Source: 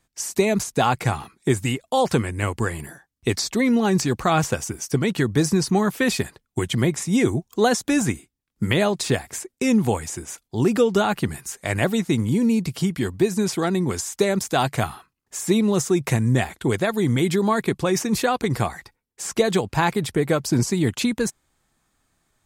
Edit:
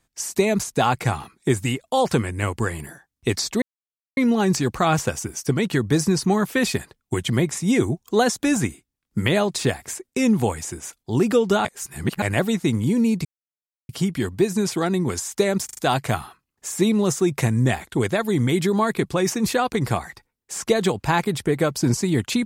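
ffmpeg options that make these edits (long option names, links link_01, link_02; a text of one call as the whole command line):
ffmpeg -i in.wav -filter_complex "[0:a]asplit=8[link_01][link_02][link_03][link_04][link_05][link_06][link_07][link_08];[link_01]atrim=end=3.62,asetpts=PTS-STARTPTS,afade=type=out:start_time=3.616:duration=0.004:curve=hsin,apad=pad_dur=0.55[link_09];[link_02]atrim=start=3.62:end=11.102,asetpts=PTS-STARTPTS,afade=type=in:duration=0.004:curve=hsin[link_10];[link_03]atrim=start=11.098:end=11.672,asetpts=PTS-STARTPTS,areverse[link_11];[link_04]atrim=start=11.668:end=12.7,asetpts=PTS-STARTPTS,afade=type=out:start_time=1.028:duration=0.004:curve=hsin,apad=pad_dur=0.64[link_12];[link_05]atrim=start=12.7:end=14.502,asetpts=PTS-STARTPTS,afade=type=in:duration=0.004:curve=hsin[link_13];[link_06]atrim=start=14.458:end=14.502[link_14];[link_07]atrim=start=14.458:end=14.502[link_15];[link_08]atrim=start=14.458[link_16];[link_09][link_10]concat=n=2:v=0:a=1[link_17];[link_17][link_11]acrossfade=duration=0.004:curve1=hsin:curve2=hsin[link_18];[link_12][link_13]concat=n=2:v=0:a=1[link_19];[link_18][link_19]acrossfade=duration=0.004:curve1=hsin:curve2=hsin[link_20];[link_20][link_14]acrossfade=duration=0.004:curve1=hsin:curve2=hsin[link_21];[link_21][link_15]acrossfade=duration=0.004:curve1=hsin:curve2=hsin[link_22];[link_22][link_16]acrossfade=duration=0.004:curve1=hsin:curve2=hsin" out.wav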